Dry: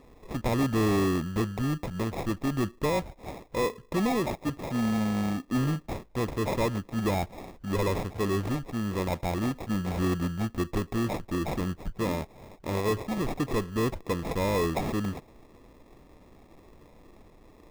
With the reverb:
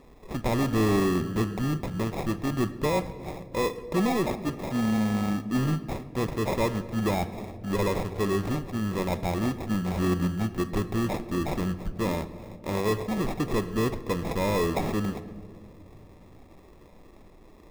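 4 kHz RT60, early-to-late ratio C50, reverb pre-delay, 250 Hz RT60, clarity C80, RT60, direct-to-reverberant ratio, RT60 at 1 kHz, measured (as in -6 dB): 1.1 s, 14.0 dB, 5 ms, 3.1 s, 15.5 dB, 2.1 s, 11.0 dB, 1.6 s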